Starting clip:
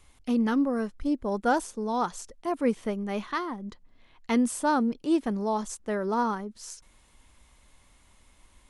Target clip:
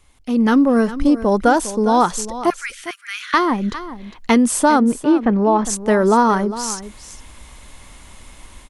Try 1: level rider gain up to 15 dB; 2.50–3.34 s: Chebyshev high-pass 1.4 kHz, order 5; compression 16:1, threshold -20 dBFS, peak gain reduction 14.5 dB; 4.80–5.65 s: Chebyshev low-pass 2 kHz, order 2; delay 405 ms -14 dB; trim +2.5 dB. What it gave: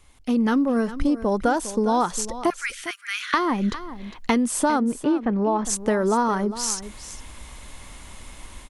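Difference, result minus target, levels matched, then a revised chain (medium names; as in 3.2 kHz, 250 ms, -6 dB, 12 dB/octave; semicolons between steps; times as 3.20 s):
compression: peak gain reduction +7.5 dB
level rider gain up to 15 dB; 2.50–3.34 s: Chebyshev high-pass 1.4 kHz, order 5; compression 16:1, threshold -12 dBFS, peak gain reduction 7 dB; 4.80–5.65 s: Chebyshev low-pass 2 kHz, order 2; delay 405 ms -14 dB; trim +2.5 dB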